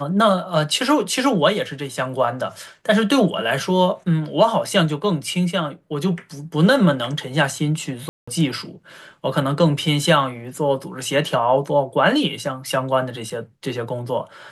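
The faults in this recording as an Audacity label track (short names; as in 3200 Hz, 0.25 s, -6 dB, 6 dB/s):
8.090000	8.280000	gap 0.185 s
13.300000	13.300000	gap 4.8 ms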